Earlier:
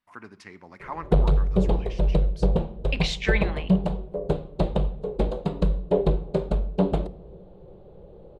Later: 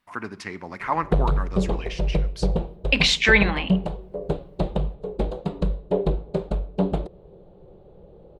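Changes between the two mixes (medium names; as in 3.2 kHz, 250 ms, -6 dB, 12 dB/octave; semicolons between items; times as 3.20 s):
speech +10.5 dB; background: send off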